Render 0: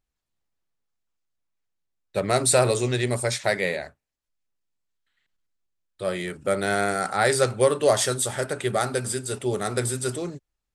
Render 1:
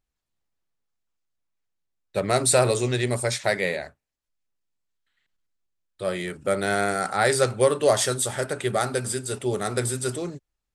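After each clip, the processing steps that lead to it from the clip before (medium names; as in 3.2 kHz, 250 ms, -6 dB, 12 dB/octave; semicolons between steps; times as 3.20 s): no audible change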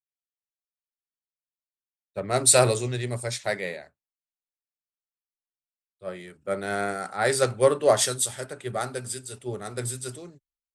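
three bands expanded up and down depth 100%; trim -4.5 dB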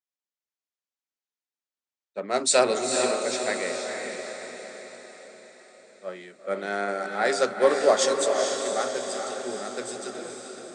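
elliptic band-pass 220–7100 Hz, stop band 40 dB; echo that smears into a reverb 460 ms, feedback 54%, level -4 dB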